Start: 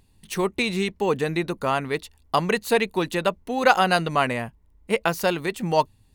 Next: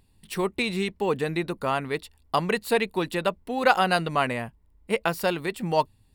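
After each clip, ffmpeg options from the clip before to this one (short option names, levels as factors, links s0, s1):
-af "bandreject=f=6300:w=5.5,volume=0.75"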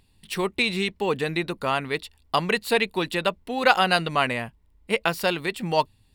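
-af "equalizer=f=3300:w=0.71:g=6"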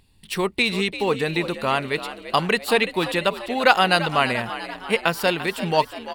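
-filter_complex "[0:a]asplit=8[s0][s1][s2][s3][s4][s5][s6][s7];[s1]adelay=342,afreqshift=61,volume=0.224[s8];[s2]adelay=684,afreqshift=122,volume=0.135[s9];[s3]adelay=1026,afreqshift=183,volume=0.0804[s10];[s4]adelay=1368,afreqshift=244,volume=0.0484[s11];[s5]adelay=1710,afreqshift=305,volume=0.0292[s12];[s6]adelay=2052,afreqshift=366,volume=0.0174[s13];[s7]adelay=2394,afreqshift=427,volume=0.0105[s14];[s0][s8][s9][s10][s11][s12][s13][s14]amix=inputs=8:normalize=0,volume=1.33"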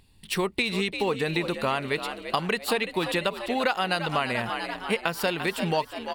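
-af "acompressor=threshold=0.0794:ratio=6"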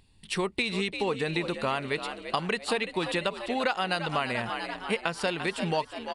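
-af "aresample=22050,aresample=44100,volume=0.75"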